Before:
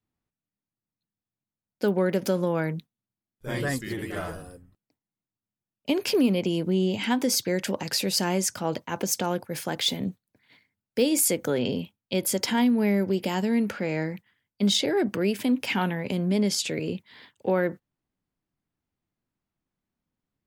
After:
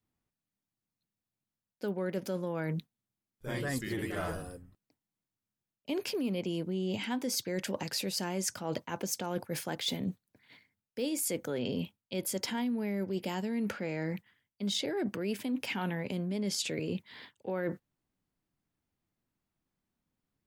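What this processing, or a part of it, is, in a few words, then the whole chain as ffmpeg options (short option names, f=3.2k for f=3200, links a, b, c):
compression on the reversed sound: -af "areverse,acompressor=threshold=-31dB:ratio=6,areverse"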